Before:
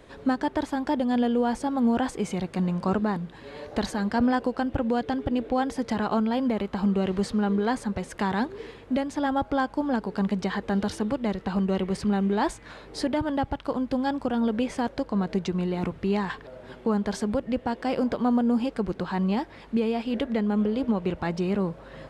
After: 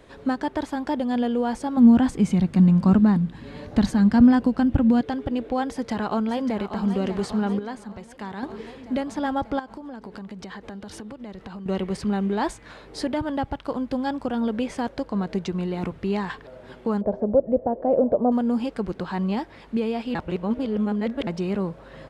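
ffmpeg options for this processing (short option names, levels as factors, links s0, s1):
-filter_complex "[0:a]asettb=1/sr,asplit=3[s0][s1][s2];[s0]atrim=end=1.774[s3];[s1]atrim=start=1.77:end=5.01,asetpts=PTS-STARTPTS,afade=t=in:d=0.004:c=qsin,afade=t=out:st=3.236:d=0.004:c=qsin,lowshelf=f=310:t=q:w=1.5:g=8.5[s4];[s2]atrim=start=5.006[s5];[s3][s4]acrossfade=d=0.004:c1=hsin:c2=qsin[s6];[s6][s5]acrossfade=d=0.004:c1=qsin:c2=hsin,asplit=2[s7][s8];[s8]afade=t=in:st=5.68:d=0.01,afade=t=out:st=6.83:d=0.01,aecho=0:1:590|1180|1770|2360|2950|3540|4130|4720|5310|5900:0.334965|0.234476|0.164133|0.114893|0.0804252|0.0562976|0.0394083|0.0275858|0.0193101|0.0135171[s9];[s7][s9]amix=inputs=2:normalize=0,asettb=1/sr,asplit=3[s10][s11][s12];[s10]atrim=end=9.594[s13];[s11]atrim=start=9.59:end=11.66,asetpts=PTS-STARTPTS,afade=t=in:d=0.004:c=qsin,afade=t=out:st=2.066:d=0.004:c=qsin,acompressor=threshold=0.02:ratio=8:attack=3.2:release=140:knee=1:detection=peak[s14];[s12]atrim=start=11.656[s15];[s13][s14]acrossfade=d=0.004:c1=hsin:c2=qsin[s16];[s16][s15]acrossfade=d=0.004:c1=qsin:c2=hsin,asettb=1/sr,asplit=3[s17][s18][s19];[s17]atrim=end=17.014[s20];[s18]atrim=start=17.01:end=18.32,asetpts=PTS-STARTPTS,afade=t=in:d=0.004:c=qsin,afade=t=out:st=1.306:d=0.004:c=qsin,lowpass=f=600:t=q:w=4.2[s21];[s19]atrim=start=18.316[s22];[s20][s21]acrossfade=d=0.004:c1=hsin:c2=qsin[s23];[s23][s22]acrossfade=d=0.004:c1=qsin:c2=hsin,asplit=5[s24][s25][s26][s27][s28];[s24]atrim=end=7.592[s29];[s25]atrim=start=7.588:end=8.432,asetpts=PTS-STARTPTS,volume=0.376[s30];[s26]atrim=start=8.428:end=20.152[s31];[s27]atrim=start=20.148:end=21.272,asetpts=PTS-STARTPTS,areverse[s32];[s28]atrim=start=21.268[s33];[s29][s30]acrossfade=d=0.004:c1=hsin:c2=hsin[s34];[s34][s31]acrossfade=d=0.004:c1=hsin:c2=hsin[s35];[s35][s32]acrossfade=d=0.004:c1=hsin:c2=hsin[s36];[s36][s33]acrossfade=d=0.004:c1=hsin:c2=hsin"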